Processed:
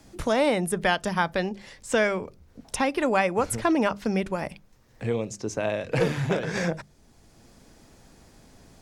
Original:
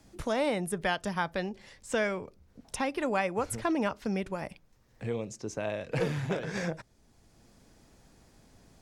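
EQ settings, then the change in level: hum notches 50/100/150/200 Hz; +6.5 dB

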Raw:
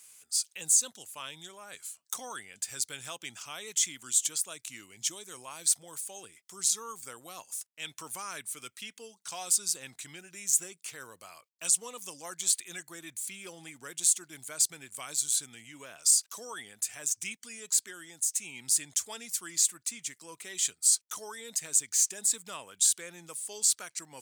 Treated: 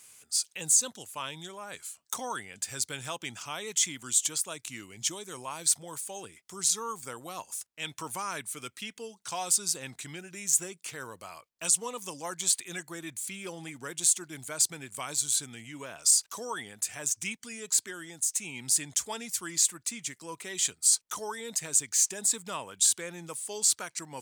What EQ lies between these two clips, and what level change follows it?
dynamic bell 930 Hz, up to +4 dB, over -60 dBFS, Q 4.2; tilt EQ -1.5 dB/octave; +5.0 dB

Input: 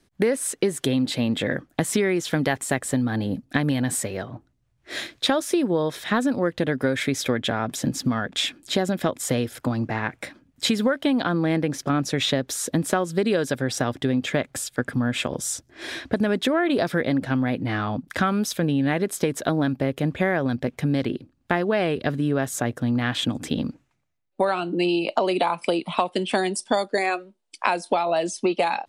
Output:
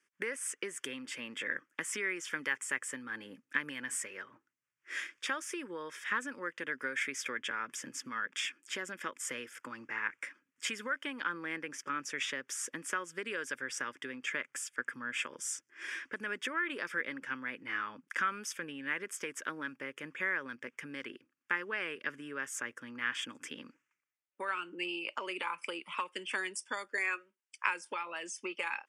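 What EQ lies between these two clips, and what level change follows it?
band-pass 610–5300 Hz; treble shelf 3 kHz +10.5 dB; static phaser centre 1.7 kHz, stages 4; -7.0 dB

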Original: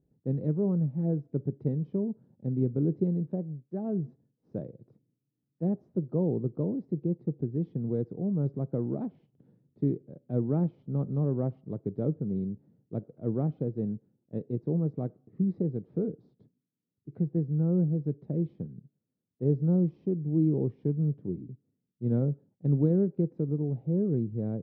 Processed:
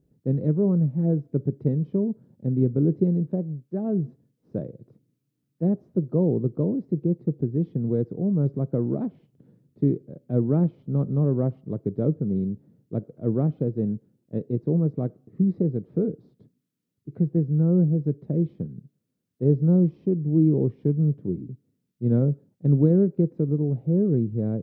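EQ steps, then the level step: peaking EQ 810 Hz -4.5 dB 0.35 oct; +6.0 dB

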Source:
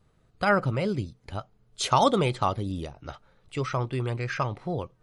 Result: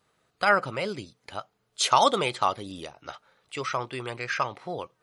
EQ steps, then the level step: high-pass 870 Hz 6 dB/octave; +4.5 dB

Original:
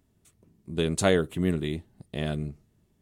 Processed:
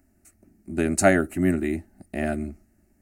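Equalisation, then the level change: static phaser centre 690 Hz, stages 8; +8.0 dB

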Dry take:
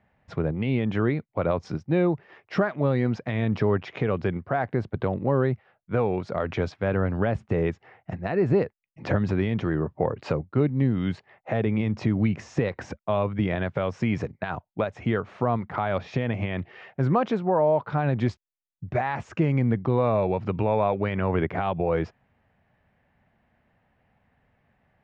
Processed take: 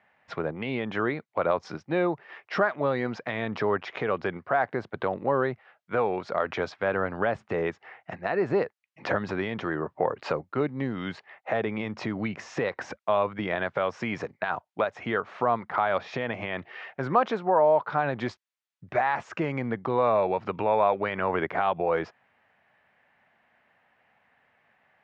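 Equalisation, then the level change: dynamic bell 2.5 kHz, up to -6 dB, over -47 dBFS, Q 1.1; band-pass filter 2 kHz, Q 0.57; +7.0 dB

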